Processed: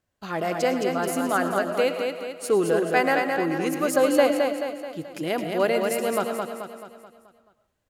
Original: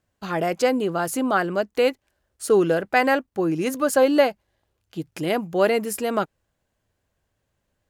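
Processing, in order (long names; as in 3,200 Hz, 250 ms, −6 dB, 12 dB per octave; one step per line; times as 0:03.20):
low-shelf EQ 230 Hz −3 dB
repeating echo 216 ms, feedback 49%, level −4.5 dB
convolution reverb RT60 0.40 s, pre-delay 70 ms, DRR 10 dB
level −3 dB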